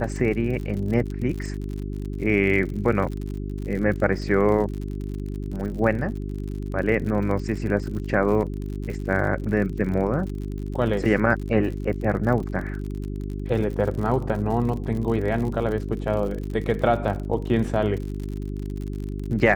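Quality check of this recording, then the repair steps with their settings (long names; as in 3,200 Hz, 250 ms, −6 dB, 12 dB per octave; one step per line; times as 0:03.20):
surface crackle 56 per second −31 dBFS
mains hum 50 Hz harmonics 8 −30 dBFS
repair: click removal
hum removal 50 Hz, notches 8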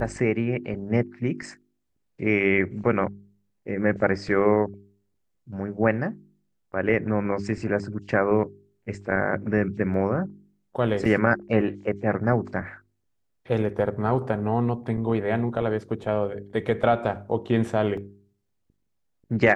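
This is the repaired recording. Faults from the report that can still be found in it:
none of them is left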